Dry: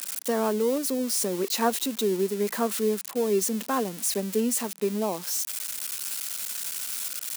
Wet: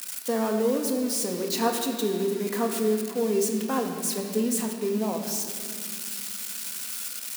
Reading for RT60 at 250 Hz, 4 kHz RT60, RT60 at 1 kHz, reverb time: 4.0 s, 1.7 s, 2.0 s, 2.4 s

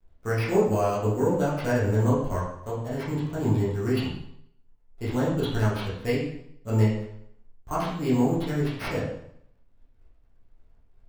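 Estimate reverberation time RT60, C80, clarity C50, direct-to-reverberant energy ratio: 0.70 s, 5.5 dB, 2.5 dB, -9.0 dB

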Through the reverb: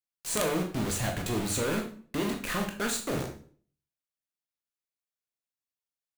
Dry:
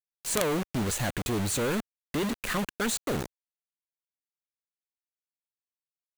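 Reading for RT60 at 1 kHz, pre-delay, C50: 0.45 s, 14 ms, 8.0 dB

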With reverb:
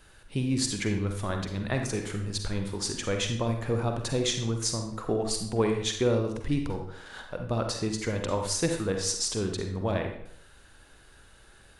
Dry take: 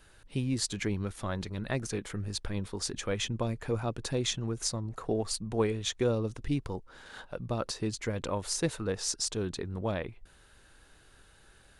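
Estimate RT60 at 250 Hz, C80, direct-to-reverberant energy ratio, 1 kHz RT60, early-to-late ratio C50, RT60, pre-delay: 0.70 s, 9.0 dB, 4.0 dB, 0.70 s, 5.5 dB, 0.70 s, 40 ms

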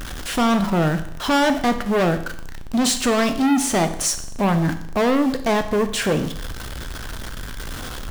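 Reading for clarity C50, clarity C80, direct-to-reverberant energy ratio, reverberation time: 11.5 dB, 14.5 dB, 8.0 dB, 0.70 s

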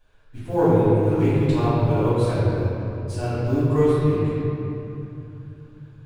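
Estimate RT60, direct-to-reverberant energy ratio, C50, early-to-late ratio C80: 3.0 s, -15.0 dB, -5.5 dB, -3.0 dB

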